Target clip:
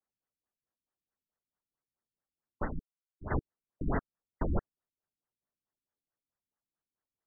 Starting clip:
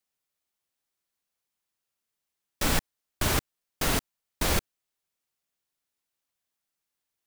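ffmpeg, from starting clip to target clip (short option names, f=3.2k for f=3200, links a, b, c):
-filter_complex "[0:a]asplit=3[a][b][c];[a]afade=t=out:st=2.64:d=0.02[d];[b]agate=range=-33dB:threshold=-16dB:ratio=3:detection=peak,afade=t=in:st=2.64:d=0.02,afade=t=out:st=3.3:d=0.02[e];[c]afade=t=in:st=3.3:d=0.02[f];[d][e][f]amix=inputs=3:normalize=0,afftfilt=real='re*lt(b*sr/1024,310*pow(2100/310,0.5+0.5*sin(2*PI*4.6*pts/sr)))':imag='im*lt(b*sr/1024,310*pow(2100/310,0.5+0.5*sin(2*PI*4.6*pts/sr)))':win_size=1024:overlap=0.75,volume=-2dB"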